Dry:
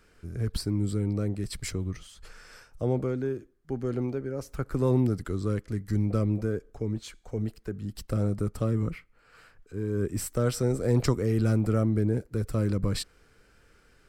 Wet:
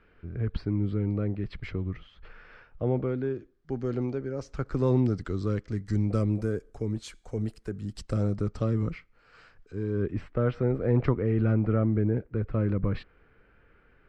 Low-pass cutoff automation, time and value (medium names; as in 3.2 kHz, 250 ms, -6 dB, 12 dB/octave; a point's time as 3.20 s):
low-pass 24 dB/octave
2.89 s 3 kHz
3.72 s 6.1 kHz
5.61 s 6.1 kHz
6.48 s 11 kHz
7.62 s 11 kHz
8.42 s 6 kHz
9.77 s 6 kHz
10.25 s 2.6 kHz